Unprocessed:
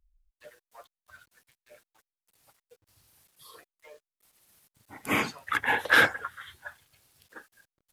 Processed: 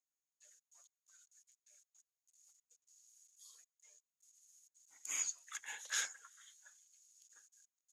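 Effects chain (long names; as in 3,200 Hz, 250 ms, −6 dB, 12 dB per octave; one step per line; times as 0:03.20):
resonant band-pass 6,700 Hz, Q 18
level +14.5 dB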